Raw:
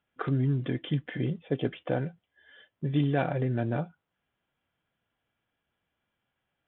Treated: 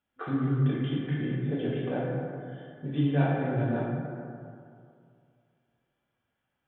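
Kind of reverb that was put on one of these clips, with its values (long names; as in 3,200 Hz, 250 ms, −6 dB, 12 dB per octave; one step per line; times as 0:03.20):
dense smooth reverb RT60 2.4 s, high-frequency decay 0.4×, DRR −6 dB
level −7 dB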